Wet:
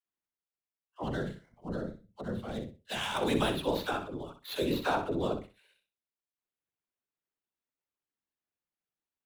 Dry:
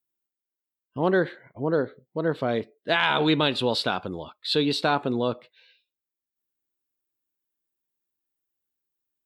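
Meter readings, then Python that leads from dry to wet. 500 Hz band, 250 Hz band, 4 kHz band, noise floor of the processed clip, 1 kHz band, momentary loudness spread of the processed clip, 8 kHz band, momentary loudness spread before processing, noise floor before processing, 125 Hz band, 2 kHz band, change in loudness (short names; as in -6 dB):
-8.5 dB, -7.5 dB, -11.0 dB, under -85 dBFS, -7.5 dB, 12 LU, -1.0 dB, 11 LU, under -85 dBFS, -7.0 dB, -11.0 dB, -9.0 dB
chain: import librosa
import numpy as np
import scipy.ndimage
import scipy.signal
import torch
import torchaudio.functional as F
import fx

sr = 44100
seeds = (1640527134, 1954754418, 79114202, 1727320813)

p1 = scipy.ndimage.median_filter(x, 9, mode='constant')
p2 = fx.dispersion(p1, sr, late='lows', ms=78.0, hz=350.0)
p3 = fx.whisperise(p2, sr, seeds[0])
p4 = fx.spec_box(p3, sr, start_s=1.04, length_s=2.11, low_hz=240.0, high_hz=2600.0, gain_db=-8)
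p5 = p4 + fx.echo_feedback(p4, sr, ms=62, feedback_pct=22, wet_db=-9.0, dry=0)
y = p5 * librosa.db_to_amplitude(-6.5)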